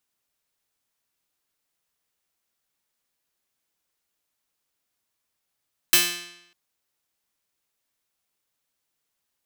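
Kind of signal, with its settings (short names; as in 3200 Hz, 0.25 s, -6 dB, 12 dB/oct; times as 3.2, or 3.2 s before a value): plucked string F3, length 0.60 s, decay 0.83 s, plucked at 0.37, bright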